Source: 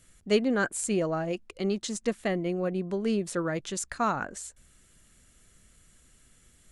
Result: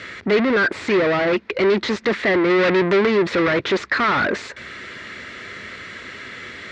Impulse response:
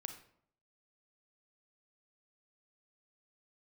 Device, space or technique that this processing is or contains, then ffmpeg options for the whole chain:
overdrive pedal into a guitar cabinet: -filter_complex "[0:a]asplit=2[link_01][link_02];[link_02]highpass=frequency=720:poles=1,volume=41dB,asoftclip=type=tanh:threshold=-11.5dB[link_03];[link_01][link_03]amix=inputs=2:normalize=0,lowpass=frequency=3700:poles=1,volume=-6dB,highpass=77,equalizer=frequency=92:width_type=q:width=4:gain=4,equalizer=frequency=160:width_type=q:width=4:gain=-5,equalizer=frequency=400:width_type=q:width=4:gain=4,equalizer=frequency=760:width_type=q:width=4:gain=-6,equalizer=frequency=2000:width_type=q:width=4:gain=7,equalizer=frequency=3000:width_type=q:width=4:gain=-5,lowpass=frequency=4200:width=0.5412,lowpass=frequency=4200:width=1.3066,asplit=3[link_04][link_05][link_06];[link_04]afade=type=out:start_time=2.49:duration=0.02[link_07];[link_05]highshelf=frequency=2100:gain=9.5,afade=type=in:start_time=2.49:duration=0.02,afade=type=out:start_time=3.05:duration=0.02[link_08];[link_06]afade=type=in:start_time=3.05:duration=0.02[link_09];[link_07][link_08][link_09]amix=inputs=3:normalize=0"

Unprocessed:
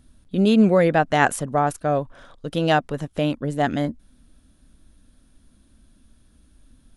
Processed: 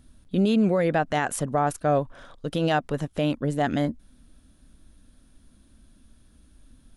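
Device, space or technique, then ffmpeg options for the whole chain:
stacked limiters: -af "alimiter=limit=-10dB:level=0:latency=1:release=149,alimiter=limit=-13.5dB:level=0:latency=1:release=74"

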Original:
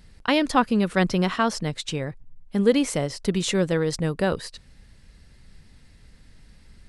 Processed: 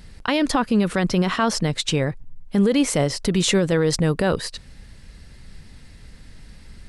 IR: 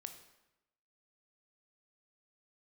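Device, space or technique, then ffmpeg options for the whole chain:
stacked limiters: -af "alimiter=limit=-11.5dB:level=0:latency=1:release=364,alimiter=limit=-17.5dB:level=0:latency=1:release=21,volume=7.5dB"

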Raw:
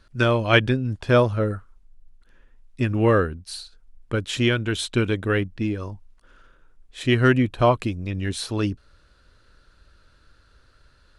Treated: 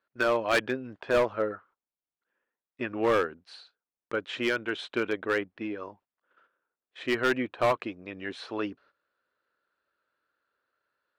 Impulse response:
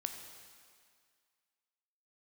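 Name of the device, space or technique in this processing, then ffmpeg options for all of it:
walkie-talkie: -af "highpass=430,lowpass=2300,asoftclip=type=hard:threshold=-17.5dB,agate=range=-15dB:threshold=-56dB:ratio=16:detection=peak,volume=-1dB"

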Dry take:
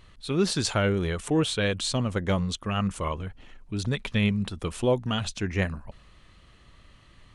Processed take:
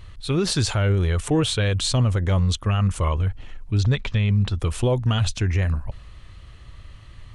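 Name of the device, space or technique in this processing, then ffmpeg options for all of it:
car stereo with a boomy subwoofer: -filter_complex "[0:a]asettb=1/sr,asplit=3[link_01][link_02][link_03];[link_01]atrim=end=3.784[link_04];[link_02]atrim=start=3.78:end=4.6,asetpts=PTS-STARTPTS,afade=type=in:duration=0.004:curve=qsin,afade=type=out:start_time=0.816:duration=0.004:curve=qsin,lowpass=frequency=7100:width=0.5412,lowpass=frequency=7100:width=1.3066[link_05];[link_03]atrim=start=4.596[link_06];[link_04][link_05]acrossfade=duration=0.004:curve1=hsin:curve2=qsin[link_07];[link_07][link_06]acrossfade=duration=0.004:curve1=qsin:curve2=hsin,lowshelf=frequency=140:width_type=q:width=1.5:gain=7.5,alimiter=limit=-17.5dB:level=0:latency=1:release=50,volume=5dB"

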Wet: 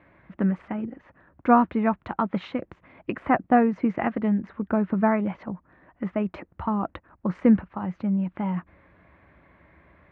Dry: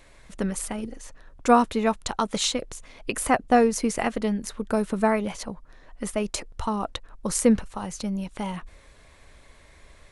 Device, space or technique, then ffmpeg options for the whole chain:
bass cabinet: -af "highpass=frequency=66:width=0.5412,highpass=frequency=66:width=1.3066,equalizer=frequency=180:width_type=q:width=4:gain=7,equalizer=frequency=320:width_type=q:width=4:gain=6,equalizer=frequency=450:width_type=q:width=4:gain=-6,lowpass=frequency=2100:width=0.5412,lowpass=frequency=2100:width=1.3066"

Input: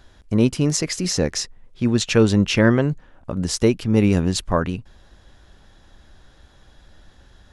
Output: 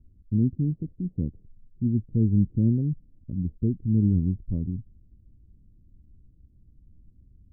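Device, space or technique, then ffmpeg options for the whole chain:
the neighbour's flat through the wall: -af "lowpass=frequency=270:width=0.5412,lowpass=frequency=270:width=1.3066,equalizer=frequency=96:width_type=o:width=0.93:gain=4,volume=-5dB"

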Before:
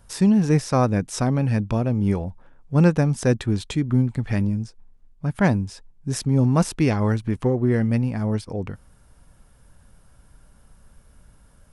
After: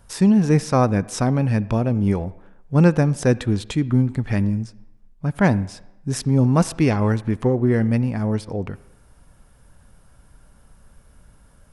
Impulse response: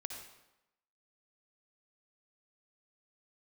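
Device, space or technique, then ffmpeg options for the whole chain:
filtered reverb send: -filter_complex "[0:a]asplit=2[link_01][link_02];[link_02]highpass=frequency=210:poles=1,lowpass=3200[link_03];[1:a]atrim=start_sample=2205[link_04];[link_03][link_04]afir=irnorm=-1:irlink=0,volume=-11.5dB[link_05];[link_01][link_05]amix=inputs=2:normalize=0,volume=1dB"

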